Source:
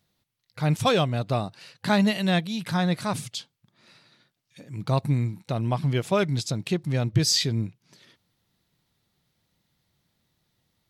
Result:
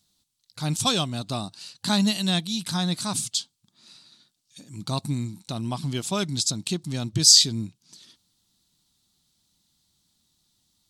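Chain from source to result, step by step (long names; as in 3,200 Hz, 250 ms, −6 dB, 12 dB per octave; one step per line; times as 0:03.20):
graphic EQ with 10 bands 125 Hz −7 dB, 250 Hz +3 dB, 500 Hz −11 dB, 2,000 Hz −10 dB, 4,000 Hz +6 dB, 8,000 Hz +11 dB
level +1 dB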